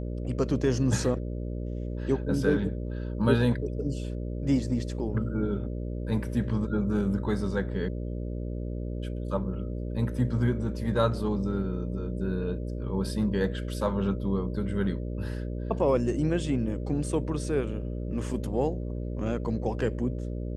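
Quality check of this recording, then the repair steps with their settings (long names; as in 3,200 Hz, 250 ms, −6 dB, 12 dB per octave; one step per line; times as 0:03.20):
mains buzz 60 Hz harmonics 10 −33 dBFS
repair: hum removal 60 Hz, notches 10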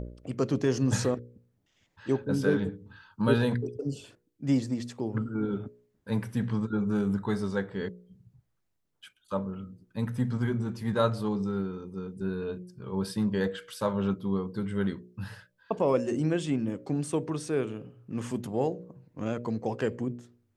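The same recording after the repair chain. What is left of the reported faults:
none of them is left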